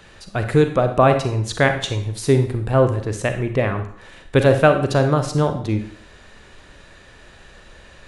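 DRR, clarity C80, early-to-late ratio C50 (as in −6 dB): 6.5 dB, 12.5 dB, 9.0 dB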